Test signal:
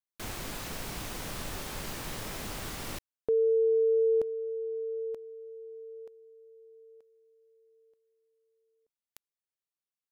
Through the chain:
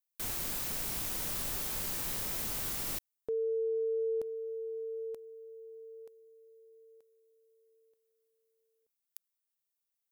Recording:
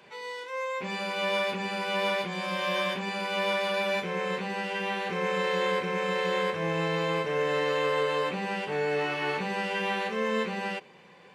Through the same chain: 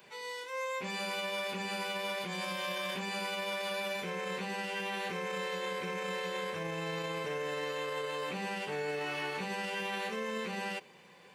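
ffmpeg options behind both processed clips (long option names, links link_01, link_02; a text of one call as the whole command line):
ffmpeg -i in.wav -af "alimiter=level_in=0.5dB:limit=-24dB:level=0:latency=1:release=43,volume=-0.5dB,aemphasis=mode=production:type=50kf,volume=-4.5dB" out.wav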